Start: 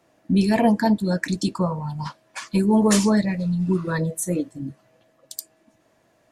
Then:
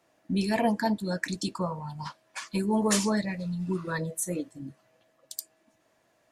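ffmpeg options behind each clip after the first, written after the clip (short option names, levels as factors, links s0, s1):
-af "lowshelf=f=490:g=-6.5,volume=0.668"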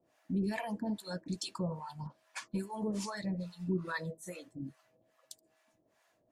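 -filter_complex "[0:a]alimiter=limit=0.0668:level=0:latency=1:release=40,acrossover=split=630[s0][s1];[s0]aeval=exprs='val(0)*(1-1/2+1/2*cos(2*PI*2.4*n/s))':c=same[s2];[s1]aeval=exprs='val(0)*(1-1/2-1/2*cos(2*PI*2.4*n/s))':c=same[s3];[s2][s3]amix=inputs=2:normalize=0"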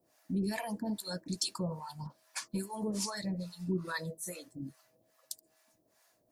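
-af "aexciter=amount=2.6:drive=5.1:freq=4200"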